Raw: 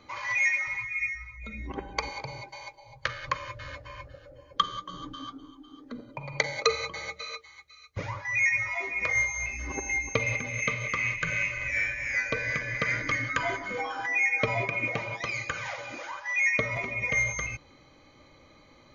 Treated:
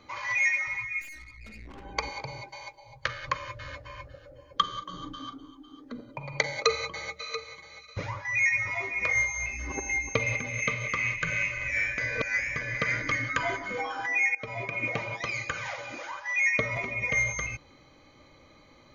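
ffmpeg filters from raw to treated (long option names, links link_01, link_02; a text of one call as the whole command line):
ffmpeg -i in.wav -filter_complex "[0:a]asplit=3[link_01][link_02][link_03];[link_01]afade=type=out:start_time=1:duration=0.02[link_04];[link_02]aeval=exprs='(tanh(141*val(0)+0.6)-tanh(0.6))/141':channel_layout=same,afade=type=in:start_time=1:duration=0.02,afade=type=out:start_time=1.84:duration=0.02[link_05];[link_03]afade=type=in:start_time=1.84:duration=0.02[link_06];[link_04][link_05][link_06]amix=inputs=3:normalize=0,asettb=1/sr,asplit=3[link_07][link_08][link_09];[link_07]atrim=end=4.714[link_10];[link_08]atrim=start=4.71:end=5.42,asetpts=PTS-STARTPTS,afade=type=in:duration=0.004:curve=qsin,afade=type=out:start_time=0.706:duration=0.004:curve=qsin,asplit=2[link_11][link_12];[link_12]adelay=39,volume=-11dB[link_13];[link_11][link_13]amix=inputs=2:normalize=0,atrim=end_sample=31311[link_14];[link_09]atrim=start=5.416[link_15];[link_10][link_14]acrossfade=duration=0.004:curve1=hsin:curve2=qsin[link_16];[link_16][link_15]acrossfade=duration=0.004:curve1=qsin:curve2=hsin,asettb=1/sr,asplit=3[link_17][link_18][link_19];[link_17]atrim=end=6.624[link_20];[link_18]atrim=start=6.62:end=9.14,asetpts=PTS-STARTPTS,afade=type=in:duration=0.004:curve=qsin,afade=type=out:start_time=2.516:duration=0.004:curve=qsin,aecho=1:1:685:0.237,atrim=end_sample=111132[link_21];[link_19]atrim=start=9.136[link_22];[link_20][link_21]acrossfade=duration=0.004:curve1=hsin:curve2=qsin[link_23];[link_23][link_22]acrossfade=duration=0.004:curve1=qsin:curve2=hsin,asplit=4[link_24][link_25][link_26][link_27];[link_24]atrim=end=11.982[link_28];[link_25]atrim=start=11.978:end=12.562,asetpts=PTS-STARTPTS,areverse[link_29];[link_26]atrim=start=12.558:end=14.35,asetpts=PTS-STARTPTS,afade=type=out:start_time=1.788:duration=0.004:curve=hsin:silence=0.105925[link_30];[link_27]atrim=start=14.35,asetpts=PTS-STARTPTS,afade=type=in:duration=0.55:silence=0.105925[link_31];[link_28][link_29]acrossfade=duration=0.004:curve1=hsin:curve2=hsin[link_32];[link_30][link_31]concat=n=2:v=0:a=1[link_33];[link_32][link_33]acrossfade=duration=0.004:curve1=hsin:curve2=hsin" out.wav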